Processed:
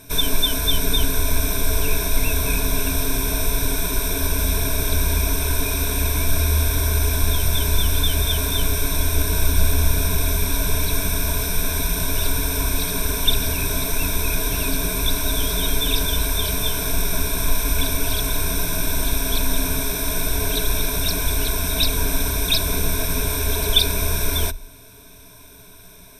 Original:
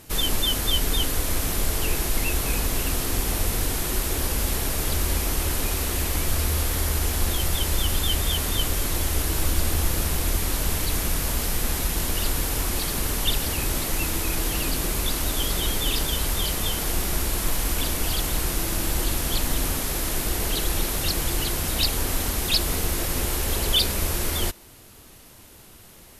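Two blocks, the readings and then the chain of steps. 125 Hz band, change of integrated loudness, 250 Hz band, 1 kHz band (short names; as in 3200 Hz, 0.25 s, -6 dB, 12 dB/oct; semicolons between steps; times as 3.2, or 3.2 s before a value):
+4.5 dB, +3.5 dB, +3.0 dB, +2.0 dB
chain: ripple EQ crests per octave 1.6, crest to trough 16 dB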